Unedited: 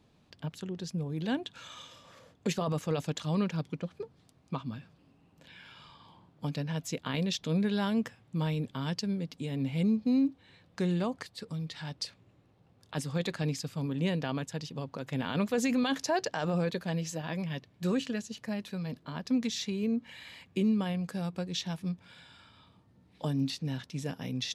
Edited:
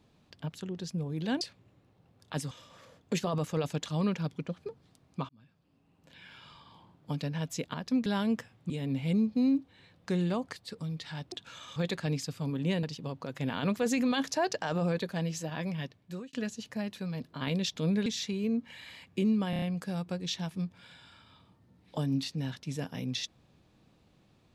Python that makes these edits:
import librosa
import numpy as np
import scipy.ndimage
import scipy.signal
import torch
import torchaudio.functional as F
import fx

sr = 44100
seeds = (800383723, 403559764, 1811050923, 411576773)

y = fx.edit(x, sr, fx.swap(start_s=1.41, length_s=0.44, other_s=12.02, other_length_s=1.1),
    fx.fade_in_span(start_s=4.63, length_s=0.99),
    fx.swap(start_s=7.08, length_s=0.65, other_s=19.13, other_length_s=0.32),
    fx.cut(start_s=8.37, length_s=1.03),
    fx.cut(start_s=14.19, length_s=0.36),
    fx.fade_out_span(start_s=17.53, length_s=0.52),
    fx.stutter(start_s=20.89, slice_s=0.03, count=5), tone=tone)